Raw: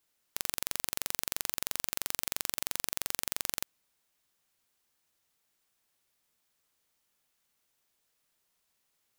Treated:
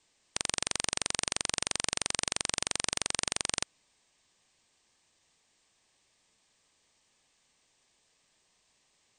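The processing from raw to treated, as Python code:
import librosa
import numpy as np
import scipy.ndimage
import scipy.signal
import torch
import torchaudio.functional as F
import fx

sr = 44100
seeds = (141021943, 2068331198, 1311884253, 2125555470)

p1 = fx.brickwall_lowpass(x, sr, high_hz=8900.0)
p2 = np.clip(p1, -10.0 ** (-37.5 / 20.0), 10.0 ** (-37.5 / 20.0))
p3 = p1 + F.gain(torch.from_numpy(p2), -5.5).numpy()
p4 = fx.notch(p3, sr, hz=1400.0, q=5.2)
y = F.gain(torch.from_numpy(p4), 6.0).numpy()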